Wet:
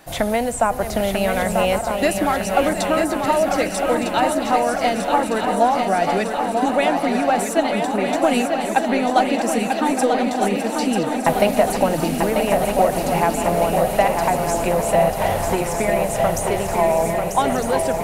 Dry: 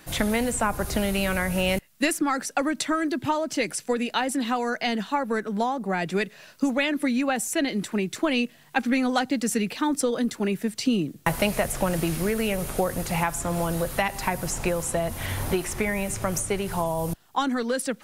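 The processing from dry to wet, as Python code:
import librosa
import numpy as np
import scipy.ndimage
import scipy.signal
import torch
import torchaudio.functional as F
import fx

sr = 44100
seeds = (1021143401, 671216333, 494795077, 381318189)

p1 = fx.reverse_delay_fb(x, sr, ms=606, feedback_pct=73, wet_db=-11.0)
p2 = fx.peak_eq(p1, sr, hz=690.0, db=11.5, octaves=0.82)
y = p2 + fx.echo_swing(p2, sr, ms=1255, ratio=3, feedback_pct=59, wet_db=-6, dry=0)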